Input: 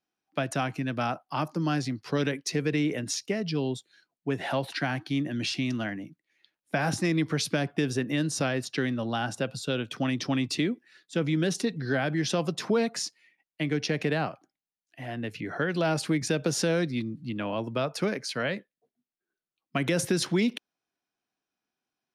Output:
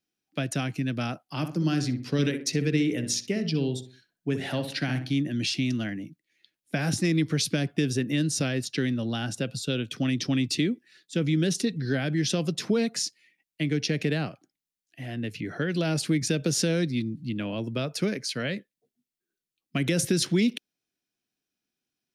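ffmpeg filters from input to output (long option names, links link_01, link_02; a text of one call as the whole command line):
ffmpeg -i in.wav -filter_complex "[0:a]asettb=1/sr,asplit=3[link_01][link_02][link_03];[link_01]atrim=end=1.284[link_04];[link_02]atrim=start=1.28:end=5.16,asetpts=PTS-STARTPTS,afade=type=in:duration=0.004:curve=qsin,afade=type=out:start_time=3.876:duration=0.004:curve=qsin,asplit=2[link_05][link_06];[link_06]adelay=63,lowpass=frequency=1700:poles=1,volume=-8dB,asplit=2[link_07][link_08];[link_08]adelay=63,lowpass=frequency=1700:poles=1,volume=0.39,asplit=2[link_09][link_10];[link_10]adelay=63,lowpass=frequency=1700:poles=1,volume=0.39,asplit=2[link_11][link_12];[link_12]adelay=63,lowpass=frequency=1700:poles=1,volume=0.39[link_13];[link_05][link_07][link_09][link_11][link_13]amix=inputs=5:normalize=0,atrim=end_sample=171108[link_14];[link_03]atrim=start=5.156[link_15];[link_04][link_14]acrossfade=duration=0.004:curve1=hsin:curve2=qsin[link_16];[link_16][link_15]acrossfade=duration=0.004:curve1=qsin:curve2=hsin,equalizer=frequency=940:width=0.83:gain=-13,volume=4dB" out.wav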